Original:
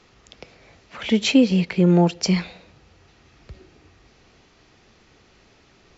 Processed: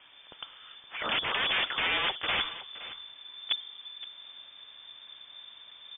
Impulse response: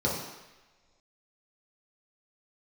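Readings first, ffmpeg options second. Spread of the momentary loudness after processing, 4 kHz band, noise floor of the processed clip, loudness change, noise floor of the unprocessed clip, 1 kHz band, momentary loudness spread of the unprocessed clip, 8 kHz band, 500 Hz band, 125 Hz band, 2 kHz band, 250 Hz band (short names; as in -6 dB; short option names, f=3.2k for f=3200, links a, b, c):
19 LU, +1.5 dB, -54 dBFS, -11.0 dB, -56 dBFS, -1.5 dB, 7 LU, n/a, -17.0 dB, -30.0 dB, +2.0 dB, -30.0 dB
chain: -af "asubboost=boost=4.5:cutoff=160,aresample=16000,aeval=exprs='(mod(11.9*val(0)+1,2)-1)/11.9':c=same,aresample=44100,aecho=1:1:518:0.168,lowpass=f=3.1k:t=q:w=0.5098,lowpass=f=3.1k:t=q:w=0.6013,lowpass=f=3.1k:t=q:w=0.9,lowpass=f=3.1k:t=q:w=2.563,afreqshift=-3600"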